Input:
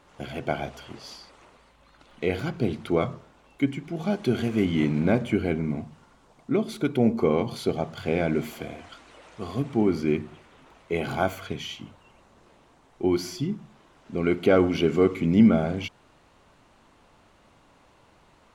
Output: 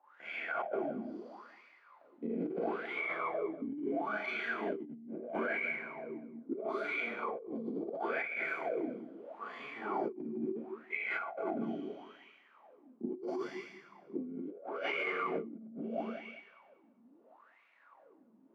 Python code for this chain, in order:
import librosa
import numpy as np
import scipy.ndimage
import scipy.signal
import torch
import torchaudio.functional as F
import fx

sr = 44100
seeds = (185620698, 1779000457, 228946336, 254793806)

p1 = fx.dynamic_eq(x, sr, hz=250.0, q=3.3, threshold_db=-35.0, ratio=4.0, max_db=-5)
p2 = fx.leveller(p1, sr, passes=1)
p3 = fx.rev_schroeder(p2, sr, rt60_s=1.2, comb_ms=27, drr_db=-9.0)
p4 = fx.wah_lfo(p3, sr, hz=0.75, low_hz=230.0, high_hz=2300.0, q=9.3)
p5 = p4 + fx.echo_feedback(p4, sr, ms=193, feedback_pct=23, wet_db=-14.0, dry=0)
p6 = fx.over_compress(p5, sr, threshold_db=-34.0, ratio=-1.0)
p7 = scipy.signal.sosfilt(scipy.signal.butter(4, 170.0, 'highpass', fs=sr, output='sos'), p6)
p8 = fx.high_shelf(p7, sr, hz=3900.0, db=-6.5)
y = F.gain(torch.from_numpy(p8), -4.5).numpy()